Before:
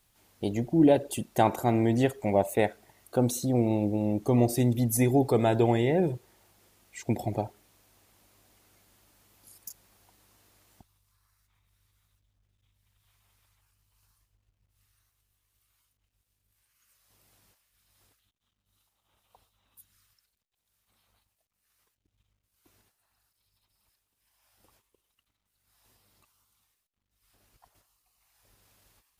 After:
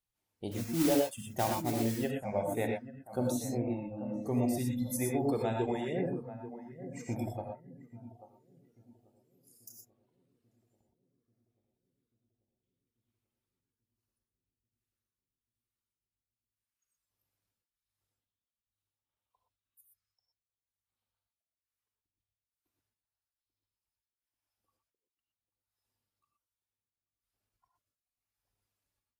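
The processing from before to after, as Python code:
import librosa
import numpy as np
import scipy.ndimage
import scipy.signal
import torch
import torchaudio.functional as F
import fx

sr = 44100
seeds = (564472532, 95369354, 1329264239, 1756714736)

y = fx.mod_noise(x, sr, seeds[0], snr_db=10, at=(0.51, 1.98))
y = fx.dereverb_blind(y, sr, rt60_s=1.9)
y = fx.echo_filtered(y, sr, ms=838, feedback_pct=62, hz=900.0, wet_db=-10.5)
y = fx.rev_gated(y, sr, seeds[1], gate_ms=140, shape='rising', drr_db=0.5)
y = fx.noise_reduce_blind(y, sr, reduce_db=14)
y = F.gain(torch.from_numpy(y), -9.0).numpy()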